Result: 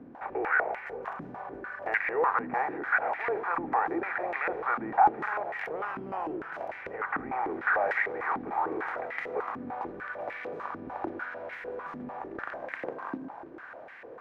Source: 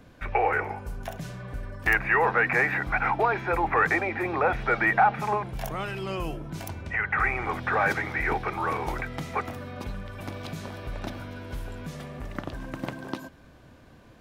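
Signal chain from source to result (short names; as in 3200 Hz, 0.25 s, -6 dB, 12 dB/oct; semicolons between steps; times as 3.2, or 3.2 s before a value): per-bin compression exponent 0.6; echo with dull and thin repeats by turns 0.165 s, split 1200 Hz, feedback 82%, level -13 dB; stepped band-pass 6.7 Hz 260–2000 Hz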